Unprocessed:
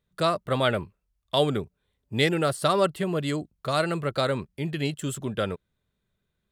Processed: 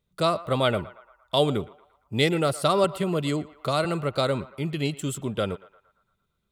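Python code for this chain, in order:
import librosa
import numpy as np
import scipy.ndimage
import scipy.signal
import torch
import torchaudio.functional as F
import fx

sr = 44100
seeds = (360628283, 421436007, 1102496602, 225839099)

y = fx.peak_eq(x, sr, hz=1700.0, db=-10.5, octaves=0.24)
y = fx.echo_banded(y, sr, ms=115, feedback_pct=57, hz=1200.0, wet_db=-16)
y = fx.band_squash(y, sr, depth_pct=40, at=(2.84, 3.85))
y = y * 10.0 ** (1.0 / 20.0)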